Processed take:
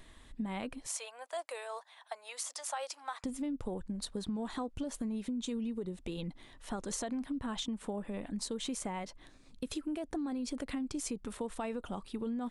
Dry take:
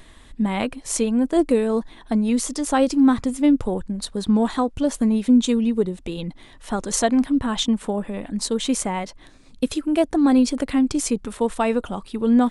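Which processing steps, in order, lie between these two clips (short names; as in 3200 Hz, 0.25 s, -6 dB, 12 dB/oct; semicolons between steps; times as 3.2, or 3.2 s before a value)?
0.87–3.24 steep high-pass 630 Hz 36 dB/oct; limiter -15 dBFS, peak gain reduction 8 dB; compressor, threshold -25 dBFS, peak gain reduction 7.5 dB; gain -9 dB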